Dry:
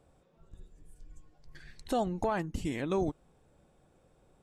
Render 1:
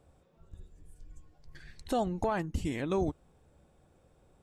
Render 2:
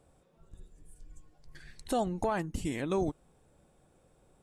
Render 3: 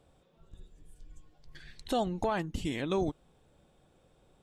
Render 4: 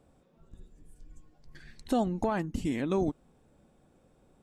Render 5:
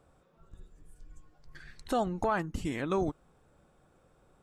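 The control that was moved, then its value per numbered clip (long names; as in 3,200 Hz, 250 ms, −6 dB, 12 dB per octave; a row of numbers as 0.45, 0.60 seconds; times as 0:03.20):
parametric band, centre frequency: 76, 9,500, 3,400, 240, 1,300 Hertz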